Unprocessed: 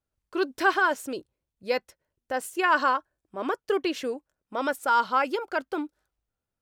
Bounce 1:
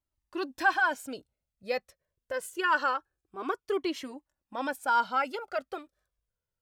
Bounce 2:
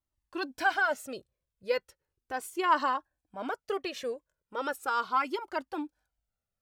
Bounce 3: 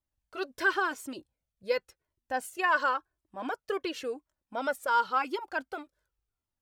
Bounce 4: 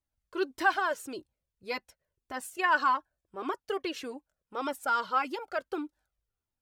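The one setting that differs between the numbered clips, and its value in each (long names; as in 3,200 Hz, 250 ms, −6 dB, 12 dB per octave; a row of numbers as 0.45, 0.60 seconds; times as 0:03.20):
flanger whose copies keep moving one way, speed: 0.25, 0.37, 0.93, 1.7 Hertz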